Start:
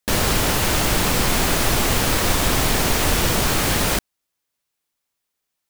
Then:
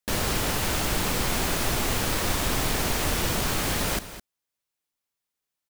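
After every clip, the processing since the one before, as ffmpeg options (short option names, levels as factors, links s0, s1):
-af "aecho=1:1:209:0.211,volume=0.447"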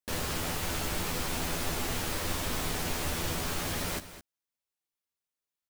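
-filter_complex "[0:a]asplit=2[s0][s1];[s1]adelay=12,volume=0.562[s2];[s0][s2]amix=inputs=2:normalize=0,volume=0.398"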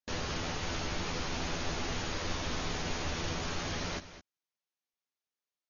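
-af "volume=0.794" -ar 48000 -c:a ac3 -b:a 48k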